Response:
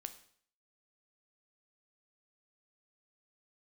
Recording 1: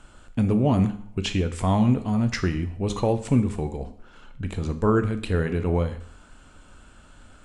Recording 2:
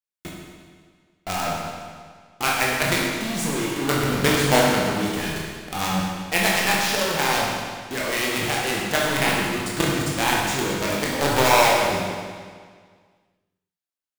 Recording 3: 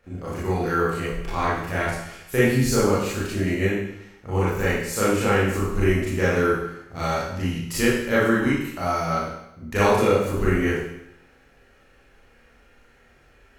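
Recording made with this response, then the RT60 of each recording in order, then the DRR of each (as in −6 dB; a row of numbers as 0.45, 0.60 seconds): 1; 0.55, 1.8, 0.80 seconds; 8.5, −4.0, −9.5 decibels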